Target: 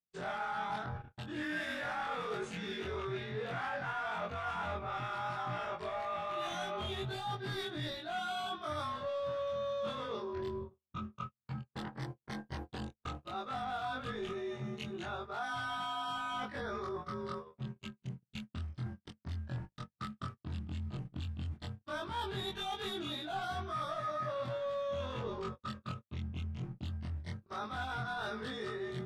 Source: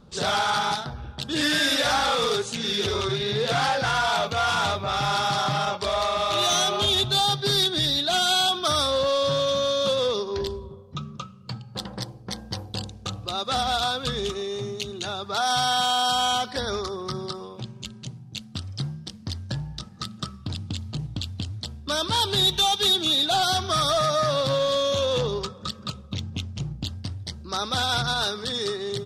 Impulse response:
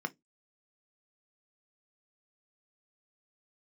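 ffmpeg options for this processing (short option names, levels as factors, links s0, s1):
-af "afftfilt=real='re':imag='-im':win_size=2048:overlap=0.75,agate=range=0.00398:threshold=0.01:ratio=16:detection=peak,highshelf=f=3000:t=q:w=1.5:g=-12.5,bandreject=f=510:w=12,areverse,acompressor=threshold=0.0112:ratio=4,areverse,volume=1.19"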